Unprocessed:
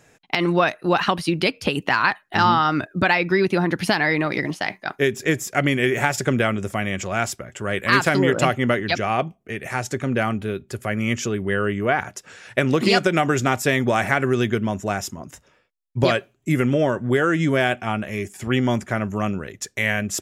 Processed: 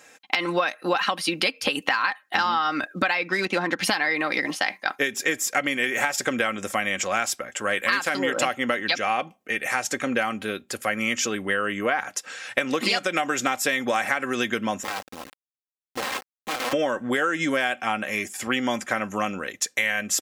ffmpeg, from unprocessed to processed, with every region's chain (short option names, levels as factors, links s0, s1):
-filter_complex "[0:a]asettb=1/sr,asplit=3[s0][s1][s2];[s0]atrim=end=3.284[s3];[s1]atrim=start=3.28:end=3.85,asetpts=PTS-STARTPTS,afade=t=in:d=0.004:c=qsin,afade=t=out:st=0.566:d=0.004:c=qsin,equalizer=f=7000:t=o:w=0.36:g=7,adynamicsmooth=sensitivity=3:basefreq=4000[s4];[s2]atrim=start=3.846[s5];[s3][s4]acrossfade=d=0.004:c1=hsin:c2=qsin[s6];[s6][s5]acrossfade=d=0.004:c1=qsin:c2=hsin,asettb=1/sr,asplit=3[s7][s8][s9];[s7]atrim=end=14.834[s10];[s8]atrim=start=14.83:end=16.73,asetpts=PTS-STARTPTS,afade=t=in:d=0.004:c=qsin,afade=t=out:st=1.896:d=0.004:c=qsin,aeval=exprs='(mod(8.91*val(0)+1,2)-1)/8.91':c=same,adynamicsmooth=sensitivity=2:basefreq=580,acrusher=bits=4:dc=4:mix=0:aa=0.000001[s11];[s9]atrim=start=16.726[s12];[s10][s11]acrossfade=d=0.004:c1=hsin:c2=qsin[s13];[s13][s12]acrossfade=d=0.004:c1=qsin:c2=hsin,highpass=f=840:p=1,aecho=1:1:3.8:0.48,acompressor=threshold=0.0501:ratio=6,volume=2"